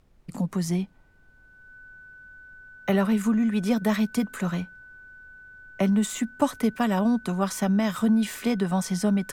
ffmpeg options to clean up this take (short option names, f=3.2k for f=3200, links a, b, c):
-af "bandreject=f=1.5k:w=30,agate=range=-21dB:threshold=-45dB"